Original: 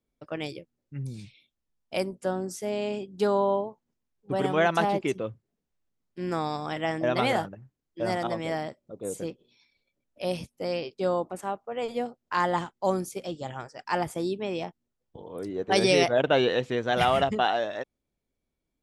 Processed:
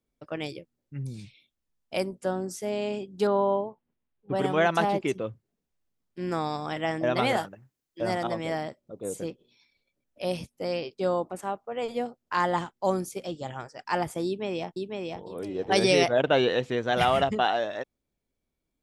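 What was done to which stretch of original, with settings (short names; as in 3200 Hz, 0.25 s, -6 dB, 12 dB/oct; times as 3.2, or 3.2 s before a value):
3.27–4.35 LPF 3400 Hz 24 dB/oct
7.37–8.01 tilt +2 dB/oct
14.26–15.2 echo throw 0.5 s, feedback 25%, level -3 dB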